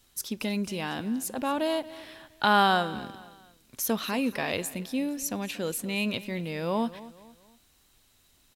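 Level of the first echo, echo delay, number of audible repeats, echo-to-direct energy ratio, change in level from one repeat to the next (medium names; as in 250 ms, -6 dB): -17.5 dB, 233 ms, 3, -17.0 dB, -8.0 dB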